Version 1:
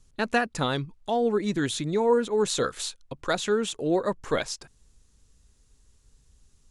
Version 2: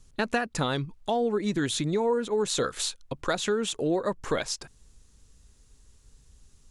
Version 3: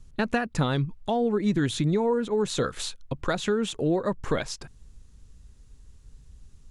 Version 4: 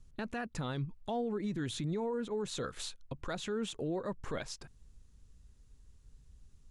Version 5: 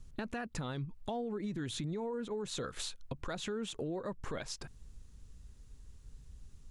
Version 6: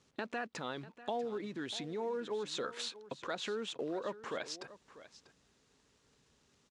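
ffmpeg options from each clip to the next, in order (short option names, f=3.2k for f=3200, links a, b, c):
-af "acompressor=threshold=-28dB:ratio=3,volume=3.5dB"
-af "bass=f=250:g=7,treble=f=4k:g=-5"
-af "alimiter=limit=-19.5dB:level=0:latency=1:release=31,volume=-8.5dB"
-af "acompressor=threshold=-43dB:ratio=3,volume=5.5dB"
-filter_complex "[0:a]asplit=2[a][b];[b]acrusher=bits=4:mode=log:mix=0:aa=0.000001,volume=-10dB[c];[a][c]amix=inputs=2:normalize=0,highpass=330,lowpass=5.5k,aecho=1:1:643:0.158"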